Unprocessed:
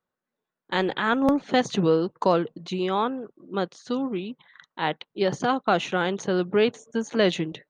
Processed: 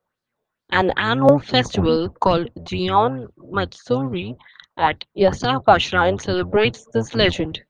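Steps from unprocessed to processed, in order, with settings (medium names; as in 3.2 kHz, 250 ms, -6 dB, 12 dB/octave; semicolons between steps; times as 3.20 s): octave divider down 1 oct, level -1 dB; sweeping bell 2.3 Hz 550–4600 Hz +13 dB; trim +2 dB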